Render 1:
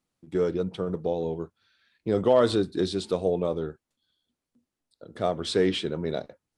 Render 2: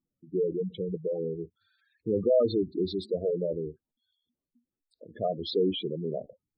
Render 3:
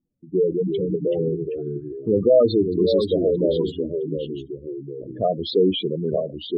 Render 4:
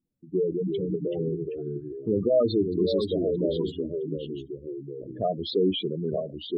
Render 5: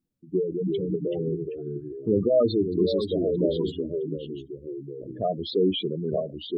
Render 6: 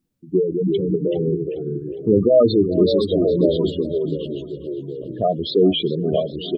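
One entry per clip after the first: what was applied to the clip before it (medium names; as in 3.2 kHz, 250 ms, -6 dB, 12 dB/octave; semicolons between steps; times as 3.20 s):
spectral gate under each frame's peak -10 dB strong; trim -2 dB
level-controlled noise filter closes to 580 Hz, open at -26 dBFS; ever faster or slower copies 288 ms, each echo -2 st, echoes 2, each echo -6 dB; trim +8 dB
dynamic bell 510 Hz, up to -6 dB, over -34 dBFS, Q 4.6; trim -4 dB
random flutter of the level, depth 50%; trim +3 dB
feedback delay 408 ms, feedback 57%, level -16.5 dB; trim +7 dB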